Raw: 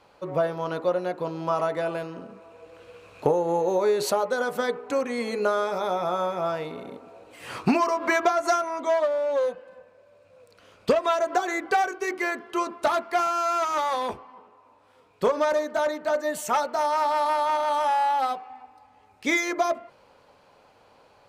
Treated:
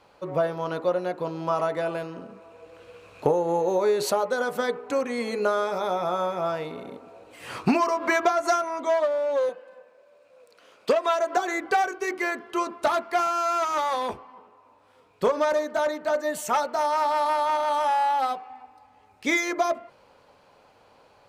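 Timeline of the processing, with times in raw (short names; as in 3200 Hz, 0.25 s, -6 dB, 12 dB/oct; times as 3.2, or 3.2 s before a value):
9.49–11.37 HPF 290 Hz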